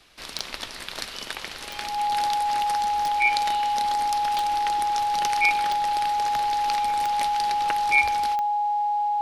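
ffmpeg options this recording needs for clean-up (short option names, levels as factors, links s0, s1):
-af "adeclick=t=4,bandreject=f=830:w=30"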